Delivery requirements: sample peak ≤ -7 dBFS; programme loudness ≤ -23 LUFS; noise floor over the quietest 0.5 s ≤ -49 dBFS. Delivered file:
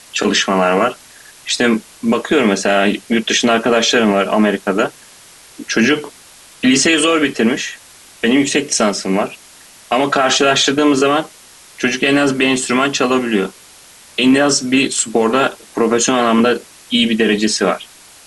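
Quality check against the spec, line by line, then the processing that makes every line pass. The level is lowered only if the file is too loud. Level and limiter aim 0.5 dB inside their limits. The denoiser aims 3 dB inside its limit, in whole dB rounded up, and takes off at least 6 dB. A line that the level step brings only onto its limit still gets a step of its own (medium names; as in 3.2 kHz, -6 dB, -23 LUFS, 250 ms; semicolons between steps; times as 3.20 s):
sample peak -3.5 dBFS: fail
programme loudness -14.5 LUFS: fail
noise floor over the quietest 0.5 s -42 dBFS: fail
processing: trim -9 dB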